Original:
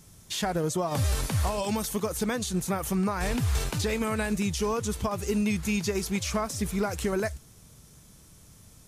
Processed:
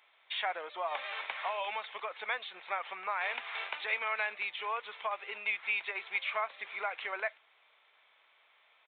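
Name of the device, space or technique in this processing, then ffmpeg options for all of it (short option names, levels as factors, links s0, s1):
musical greeting card: -af "aresample=8000,aresample=44100,highpass=f=690:w=0.5412,highpass=f=690:w=1.3066,equalizer=f=2200:t=o:w=0.4:g=8.5,volume=0.794"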